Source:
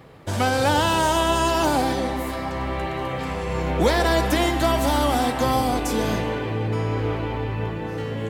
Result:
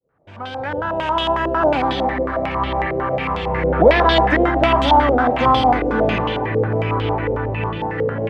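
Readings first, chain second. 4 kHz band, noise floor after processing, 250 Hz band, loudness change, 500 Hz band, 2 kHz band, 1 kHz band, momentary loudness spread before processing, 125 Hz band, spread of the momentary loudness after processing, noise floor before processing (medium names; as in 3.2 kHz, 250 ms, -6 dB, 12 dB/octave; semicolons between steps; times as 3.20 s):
+2.0 dB, -31 dBFS, +2.5 dB, +4.5 dB, +6.0 dB, +5.0 dB, +6.0 dB, 8 LU, +2.0 dB, 9 LU, -29 dBFS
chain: fade-in on the opening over 2.40 s; step-sequenced low-pass 11 Hz 500–3300 Hz; trim +2.5 dB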